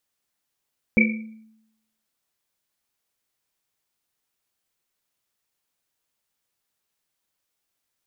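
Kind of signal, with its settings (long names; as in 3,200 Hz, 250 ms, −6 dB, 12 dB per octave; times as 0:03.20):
drum after Risset, pitch 220 Hz, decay 0.86 s, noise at 2,300 Hz, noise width 160 Hz, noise 40%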